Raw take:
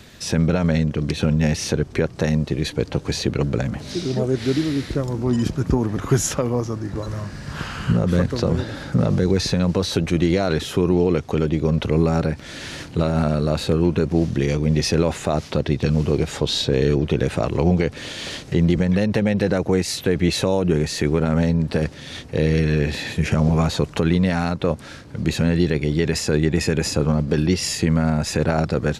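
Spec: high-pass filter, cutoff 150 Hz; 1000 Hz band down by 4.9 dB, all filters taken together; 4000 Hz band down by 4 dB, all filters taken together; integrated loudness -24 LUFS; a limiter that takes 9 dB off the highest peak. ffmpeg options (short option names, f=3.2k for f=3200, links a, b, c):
-af "highpass=150,equalizer=f=1k:t=o:g=-7,equalizer=f=4k:t=o:g=-4.5,volume=3dB,alimiter=limit=-13.5dB:level=0:latency=1"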